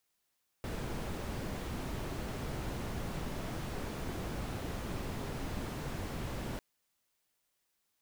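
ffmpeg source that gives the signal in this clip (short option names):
-f lavfi -i "anoisesrc=c=brown:a=0.0589:d=5.95:r=44100:seed=1"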